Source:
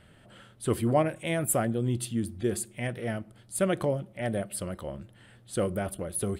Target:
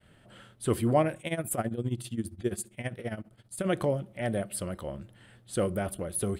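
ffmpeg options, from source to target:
-filter_complex "[0:a]agate=range=0.0224:threshold=0.00224:ratio=3:detection=peak,asplit=3[s0][s1][s2];[s0]afade=t=out:st=1.17:d=0.02[s3];[s1]tremolo=f=15:d=0.83,afade=t=in:st=1.17:d=0.02,afade=t=out:st=3.65:d=0.02[s4];[s2]afade=t=in:st=3.65:d=0.02[s5];[s3][s4][s5]amix=inputs=3:normalize=0"

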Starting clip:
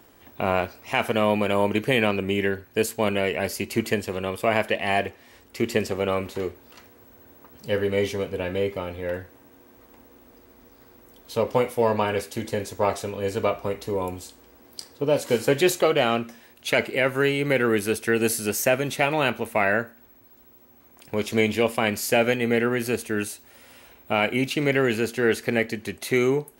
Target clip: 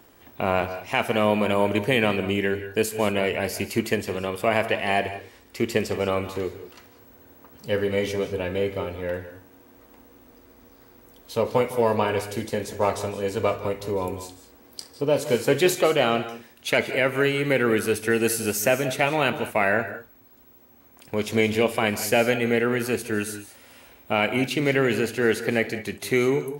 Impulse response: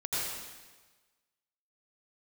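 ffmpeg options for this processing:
-filter_complex "[0:a]asplit=2[s0][s1];[1:a]atrim=start_sample=2205,atrim=end_sample=6615,adelay=66[s2];[s1][s2]afir=irnorm=-1:irlink=0,volume=0.168[s3];[s0][s3]amix=inputs=2:normalize=0"

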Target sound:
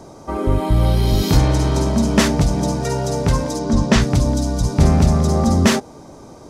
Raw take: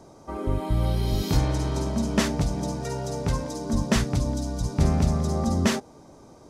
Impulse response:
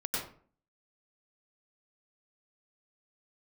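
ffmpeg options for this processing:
-filter_complex "[0:a]asettb=1/sr,asplit=3[s0][s1][s2];[s0]atrim=end=3.594[s3];[s1]atrim=start=3.59:end=4.02,asetpts=PTS-STARTPTS,afade=t=in:d=0.004:c=qsin,afade=t=out:st=0.426:d=0.004:c=qsin,lowpass=6600[s4];[s2]atrim=start=4.016[s5];[s3][s4]acrossfade=d=0.004:c1=hsin:c2=qsin[s6];[s6][s5]acrossfade=d=0.004:c1=qsin:c2=hsin,asplit=2[s7][s8];[s8]volume=14.1,asoftclip=hard,volume=0.0708,volume=0.422[s9];[s7][s9]amix=inputs=2:normalize=0,volume=2.11"

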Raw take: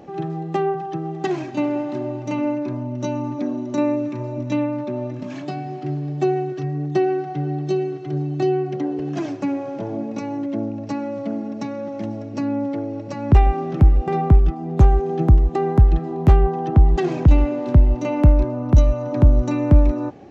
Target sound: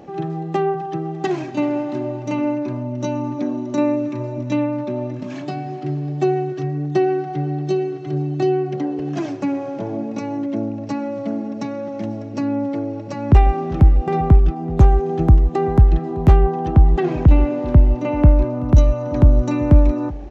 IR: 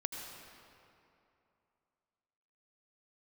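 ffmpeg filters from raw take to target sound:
-filter_complex "[0:a]asplit=2[s0][s1];[s1]aecho=0:1:381:0.0944[s2];[s0][s2]amix=inputs=2:normalize=0,asettb=1/sr,asplit=3[s3][s4][s5];[s3]atrim=end=16.834[s6];[s4]atrim=start=16.83:end=18.61,asetpts=PTS-STARTPTS,afade=t=in:d=0.004:c=qsin,afade=t=out:st=1.776:d=0.004:c=qsin,acrossover=split=3400[s7][s8];[s8]acompressor=threshold=0.00141:ratio=4:attack=1:release=60[s9];[s7][s9]amix=inputs=2:normalize=0[s10];[s5]atrim=start=18.606[s11];[s6][s10]acrossfade=d=0.004:c1=hsin:c2=qsin[s12];[s12][s11]acrossfade=d=0.004:c1=qsin:c2=hsin,volume=1.19"

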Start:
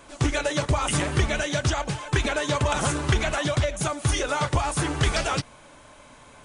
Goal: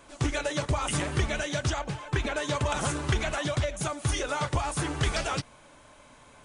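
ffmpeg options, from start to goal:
-filter_complex "[0:a]asettb=1/sr,asplit=3[s0][s1][s2];[s0]atrim=end=1.794[s3];[s1]atrim=start=1.79:end=2.36,asetpts=PTS-STARTPTS,afade=t=in:d=0.004:c=qsin,afade=t=out:st=0.566:d=0.004:c=qsin,highshelf=f=4600:g=-8[s4];[s2]atrim=start=2.356[s5];[s3][s4]acrossfade=d=0.004:c1=hsin:c2=qsin[s6];[s6][s5]acrossfade=d=0.004:c1=qsin:c2=hsin,volume=0.596"

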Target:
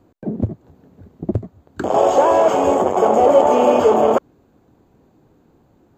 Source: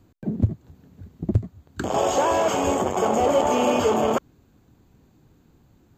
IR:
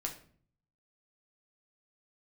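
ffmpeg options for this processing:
-af "equalizer=f=570:w=0.44:g=12.5,volume=0.631"

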